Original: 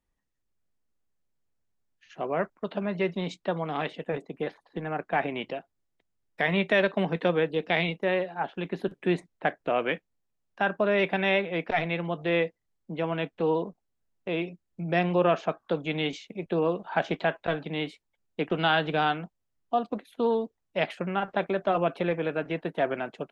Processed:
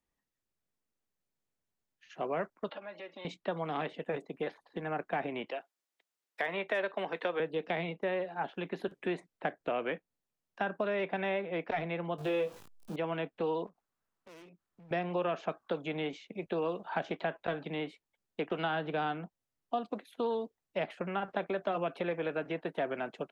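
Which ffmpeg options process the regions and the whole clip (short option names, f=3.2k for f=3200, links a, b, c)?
-filter_complex "[0:a]asettb=1/sr,asplit=3[a][b][c];[a]atrim=end=2.694[d];[b]atrim=start=2.69:end=3.25,asetpts=PTS-STARTPTS,afade=t=in:d=0.004:c=qsin,afade=t=out:st=0.556:d=0.004:c=qsin,acompressor=threshold=-33dB:ratio=12:attack=3.2:release=140:knee=1:detection=peak,highpass=510,lowpass=4.8k,aecho=1:1:3.6:0.64,atrim=end_sample=24696[e];[c]atrim=start=3.246[f];[d][e]acrossfade=d=0.004:c1=hsin:c2=qsin[g];[g][f]acrossfade=d=0.004:c1=qsin:c2=hsin,asettb=1/sr,asplit=3[h][i][j];[h]atrim=end=5.464[k];[i]atrim=start=5.46:end=7.4,asetpts=PTS-STARTPTS,afade=t=in:d=0.004:c=qsin,afade=t=out:st=1.936:d=0.004:c=qsin,highpass=340,tiltshelf=f=770:g=-4.5,asoftclip=type=hard:threshold=-11.5dB[l];[j]atrim=start=7.396[m];[k][l]acrossfade=d=0.004:c1=hsin:c2=qsin[n];[n][m]acrossfade=d=0.004:c1=qsin:c2=hsin,asettb=1/sr,asplit=3[o][p][q];[o]atrim=end=12.184[r];[p]atrim=start=12.18:end=12.96,asetpts=PTS-STARTPTS,afade=t=in:d=0.004:c=qsin,afade=t=out:st=0.776:d=0.004:c=qsin,aeval=exprs='val(0)+0.5*0.00944*sgn(val(0))':c=same,equalizer=f=2k:w=5.5:g=-13,asplit=2[s][t];[t]adelay=20,volume=-3.5dB[u];[s][u]amix=inputs=2:normalize=0,atrim=end_sample=34398[v];[q]atrim=start=12.956[w];[r][v]acrossfade=d=0.004:c1=hsin:c2=qsin[x];[x][w]acrossfade=d=0.004:c1=qsin:c2=hsin,asettb=1/sr,asplit=3[y][z][aa];[y]atrim=end=13.664[ab];[z]atrim=start=13.66:end=14.91,asetpts=PTS-STARTPTS,afade=t=in:d=0.004:c=qsin,afade=t=out:st=1.246:d=0.004:c=qsin,equalizer=f=1.2k:t=o:w=1.1:g=11,volume=35dB,asoftclip=hard,volume=-35dB,acompressor=threshold=-54dB:ratio=4:attack=3.2:release=140:knee=1:detection=peak[ac];[aa]atrim=start=14.906[ad];[ab][ac]acrossfade=d=0.004:c1=hsin:c2=qsin[ae];[ae][ad]acrossfade=d=0.004:c1=qsin:c2=hsin,lowshelf=f=87:g=-11,acrossover=split=420|1600|3200[af][ag][ah][ai];[af]acompressor=threshold=-36dB:ratio=4[aj];[ag]acompressor=threshold=-31dB:ratio=4[ak];[ah]acompressor=threshold=-44dB:ratio=4[al];[ai]acompressor=threshold=-54dB:ratio=4[am];[aj][ak][al][am]amix=inputs=4:normalize=0,volume=-2dB"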